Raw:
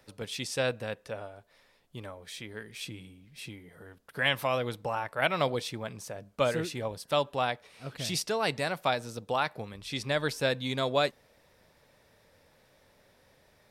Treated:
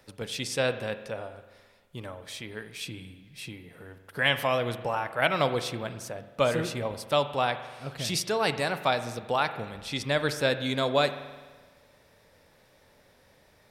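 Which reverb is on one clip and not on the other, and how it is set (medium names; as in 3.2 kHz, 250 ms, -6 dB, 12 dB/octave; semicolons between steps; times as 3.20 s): spring tank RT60 1.4 s, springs 42 ms, chirp 55 ms, DRR 10.5 dB; trim +2.5 dB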